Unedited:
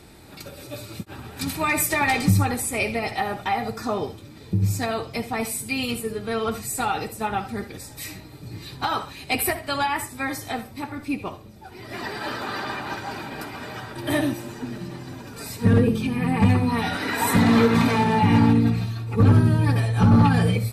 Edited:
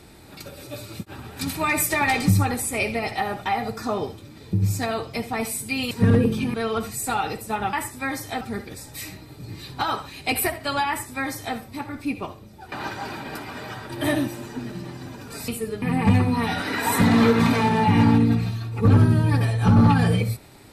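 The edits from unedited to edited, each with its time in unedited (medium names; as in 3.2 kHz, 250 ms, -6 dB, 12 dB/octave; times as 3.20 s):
5.91–6.25 s: swap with 15.54–16.17 s
9.91–10.59 s: copy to 7.44 s
11.75–12.78 s: delete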